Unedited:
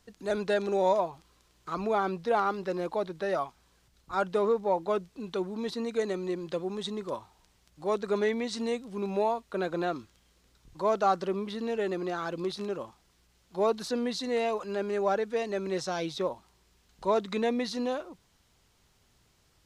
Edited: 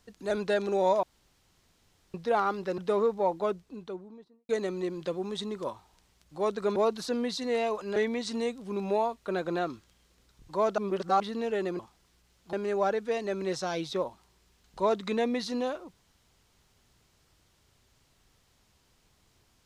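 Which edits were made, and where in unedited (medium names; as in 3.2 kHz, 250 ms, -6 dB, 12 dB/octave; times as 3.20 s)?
1.03–2.14 s: room tone
2.78–4.24 s: delete
4.74–5.95 s: studio fade out
11.04–11.46 s: reverse
12.05–12.84 s: delete
13.58–14.78 s: move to 8.22 s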